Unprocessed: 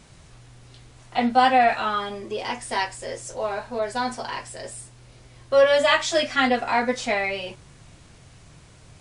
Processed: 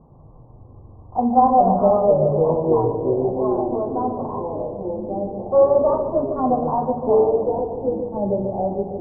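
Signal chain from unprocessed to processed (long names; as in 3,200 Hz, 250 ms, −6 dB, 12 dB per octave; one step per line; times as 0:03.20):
variable-slope delta modulation 32 kbit/s
Chebyshev low-pass filter 1,100 Hz, order 6
convolution reverb RT60 0.75 s, pre-delay 3 ms, DRR 8 dB
delay with pitch and tempo change per echo 109 ms, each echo −4 semitones, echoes 3
delay with a low-pass on its return 146 ms, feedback 58%, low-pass 720 Hz, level −6 dB
level +2 dB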